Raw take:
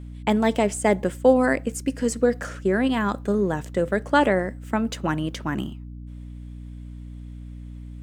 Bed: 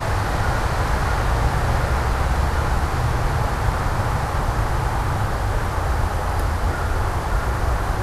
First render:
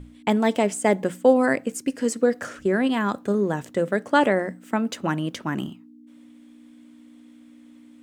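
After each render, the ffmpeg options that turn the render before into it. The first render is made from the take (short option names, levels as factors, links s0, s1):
-af "bandreject=f=60:t=h:w=6,bandreject=f=120:t=h:w=6,bandreject=f=180:t=h:w=6"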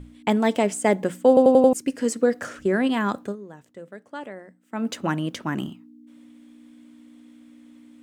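-filter_complex "[0:a]asplit=8[s0][s1][s2][s3][s4][s5][s6][s7];[s0]atrim=end=1.372[s8];[s1]atrim=start=1.278:end=1.372[s9];[s2]atrim=start=1.278:end=1.372[s10];[s3]atrim=start=1.278:end=1.372[s11];[s4]atrim=start=1.278:end=1.372[s12];[s5]atrim=start=1.728:end=3.36,asetpts=PTS-STARTPTS,afade=t=out:st=1.492:d=0.14:silence=0.133352[s13];[s6]atrim=start=3.36:end=4.71,asetpts=PTS-STARTPTS,volume=0.133[s14];[s7]atrim=start=4.71,asetpts=PTS-STARTPTS,afade=t=in:d=0.14:silence=0.133352[s15];[s8][s9]acrossfade=d=0.004:c1=hsin:c2=hsin[s16];[s16][s10]acrossfade=d=0.004:c1=hsin:c2=hsin[s17];[s17][s11]acrossfade=d=0.004:c1=hsin:c2=hsin[s18];[s18][s12]acrossfade=d=0.004:c1=hsin:c2=hsin[s19];[s13][s14][s15]concat=n=3:v=0:a=1[s20];[s19][s20]acrossfade=d=0.004:c1=hsin:c2=hsin"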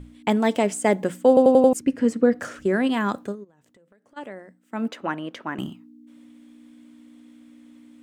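-filter_complex "[0:a]asettb=1/sr,asplit=3[s0][s1][s2];[s0]atrim=end=1.794[s3];[s1]atrim=start=1.79:end=2.4,asetpts=PTS-STARTPTS,afade=t=in:d=0.004:c=qsin,afade=t=out:st=0.606:d=0.004:c=qsin,bass=f=250:g=9,treble=f=4000:g=-12[s4];[s2]atrim=start=2.396[s5];[s3][s4]acrossfade=d=0.004:c1=hsin:c2=qsin[s6];[s6][s5]acrossfade=d=0.004:c1=qsin:c2=hsin,asplit=3[s7][s8][s9];[s7]afade=t=out:st=3.43:d=0.02[s10];[s8]acompressor=threshold=0.00224:ratio=16:attack=3.2:release=140:knee=1:detection=peak,afade=t=in:st=3.43:d=0.02,afade=t=out:st=4.16:d=0.02[s11];[s9]afade=t=in:st=4.16:d=0.02[s12];[s10][s11][s12]amix=inputs=3:normalize=0,asettb=1/sr,asplit=3[s13][s14][s15];[s13]atrim=end=4.884[s16];[s14]atrim=start=4.88:end=5.59,asetpts=PTS-STARTPTS,afade=t=in:d=0.004:c=qsin,afade=t=out:st=0.706:d=0.004:c=qsin,bass=f=250:g=-14,treble=f=4000:g=-14[s17];[s15]atrim=start=5.586[s18];[s16][s17]acrossfade=d=0.004:c1=hsin:c2=qsin[s19];[s19][s18]acrossfade=d=0.004:c1=qsin:c2=hsin"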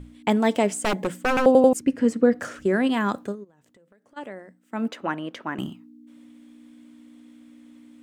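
-filter_complex "[0:a]asettb=1/sr,asplit=3[s0][s1][s2];[s0]atrim=end=0.734[s3];[s1]atrim=start=0.73:end=1.46,asetpts=PTS-STARTPTS,afade=t=in:d=0.004:c=qsin,afade=t=out:st=0.726:d=0.004:c=qsin,aeval=exprs='0.158*(abs(mod(val(0)/0.158+3,4)-2)-1)':c=same[s4];[s2]atrim=start=1.456[s5];[s3][s4]acrossfade=d=0.004:c1=hsin:c2=qsin[s6];[s6][s5]acrossfade=d=0.004:c1=qsin:c2=hsin"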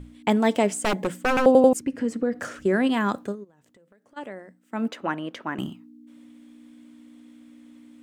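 -filter_complex "[0:a]asettb=1/sr,asplit=3[s0][s1][s2];[s0]atrim=end=1.734[s3];[s1]atrim=start=1.73:end=2.49,asetpts=PTS-STARTPTS,afade=t=in:d=0.004:c=qsin,afade=t=out:st=0.756:d=0.004:c=qsin,acompressor=threshold=0.0562:ratio=2:attack=3.2:release=140:knee=1:detection=peak[s4];[s2]atrim=start=2.486[s5];[s3][s4]acrossfade=d=0.004:c1=hsin:c2=qsin[s6];[s6][s5]acrossfade=d=0.004:c1=qsin:c2=hsin"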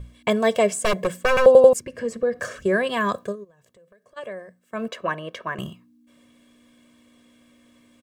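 -af "aecho=1:1:1.8:0.95"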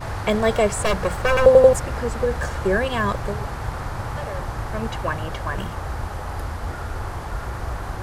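-filter_complex "[1:a]volume=0.422[s0];[0:a][s0]amix=inputs=2:normalize=0"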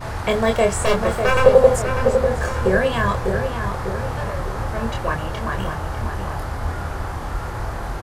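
-filter_complex "[0:a]asplit=2[s0][s1];[s1]adelay=26,volume=0.631[s2];[s0][s2]amix=inputs=2:normalize=0,asplit=2[s3][s4];[s4]adelay=598,lowpass=f=2000:p=1,volume=0.501,asplit=2[s5][s6];[s6]adelay=598,lowpass=f=2000:p=1,volume=0.54,asplit=2[s7][s8];[s8]adelay=598,lowpass=f=2000:p=1,volume=0.54,asplit=2[s9][s10];[s10]adelay=598,lowpass=f=2000:p=1,volume=0.54,asplit=2[s11][s12];[s12]adelay=598,lowpass=f=2000:p=1,volume=0.54,asplit=2[s13][s14];[s14]adelay=598,lowpass=f=2000:p=1,volume=0.54,asplit=2[s15][s16];[s16]adelay=598,lowpass=f=2000:p=1,volume=0.54[s17];[s5][s7][s9][s11][s13][s15][s17]amix=inputs=7:normalize=0[s18];[s3][s18]amix=inputs=2:normalize=0"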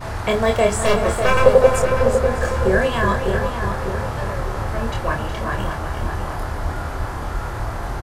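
-filter_complex "[0:a]asplit=2[s0][s1];[s1]adelay=29,volume=0.282[s2];[s0][s2]amix=inputs=2:normalize=0,aecho=1:1:367:0.376"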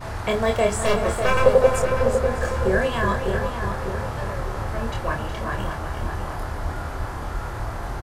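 -af "volume=0.668"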